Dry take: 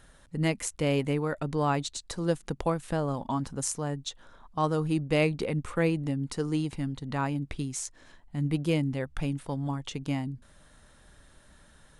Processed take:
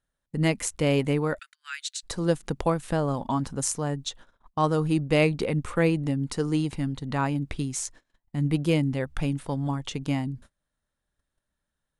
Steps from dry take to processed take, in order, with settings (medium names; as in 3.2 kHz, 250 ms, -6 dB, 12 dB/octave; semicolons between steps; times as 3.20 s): 1.39–2.03 s: Chebyshev high-pass 1.5 kHz, order 5; gate -48 dBFS, range -30 dB; trim +3.5 dB